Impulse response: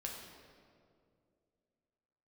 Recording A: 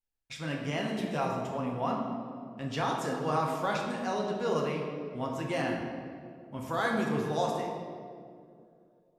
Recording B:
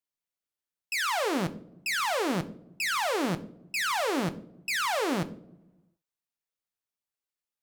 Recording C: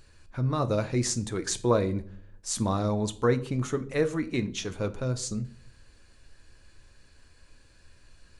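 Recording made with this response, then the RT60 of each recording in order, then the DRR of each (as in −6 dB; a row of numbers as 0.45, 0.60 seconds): A; 2.3 s, non-exponential decay, 0.55 s; −1.0, 9.0, 8.0 decibels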